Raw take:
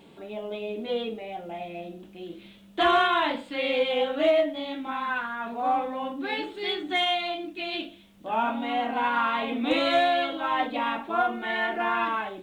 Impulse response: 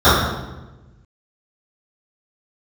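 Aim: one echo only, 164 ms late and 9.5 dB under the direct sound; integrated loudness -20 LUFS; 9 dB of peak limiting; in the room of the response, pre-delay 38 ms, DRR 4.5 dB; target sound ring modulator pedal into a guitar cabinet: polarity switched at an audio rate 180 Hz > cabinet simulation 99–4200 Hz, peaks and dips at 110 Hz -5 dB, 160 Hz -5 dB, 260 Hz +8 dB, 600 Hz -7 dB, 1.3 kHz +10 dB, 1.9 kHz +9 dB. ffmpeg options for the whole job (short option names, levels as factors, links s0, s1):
-filter_complex "[0:a]alimiter=limit=0.0944:level=0:latency=1,aecho=1:1:164:0.335,asplit=2[s0][s1];[1:a]atrim=start_sample=2205,adelay=38[s2];[s1][s2]afir=irnorm=-1:irlink=0,volume=0.0188[s3];[s0][s3]amix=inputs=2:normalize=0,aeval=exprs='val(0)*sgn(sin(2*PI*180*n/s))':c=same,highpass=99,equalizer=f=110:t=q:w=4:g=-5,equalizer=f=160:t=q:w=4:g=-5,equalizer=f=260:t=q:w=4:g=8,equalizer=f=600:t=q:w=4:g=-7,equalizer=f=1300:t=q:w=4:g=10,equalizer=f=1900:t=q:w=4:g=9,lowpass=f=4200:w=0.5412,lowpass=f=4200:w=1.3066,volume=1.58"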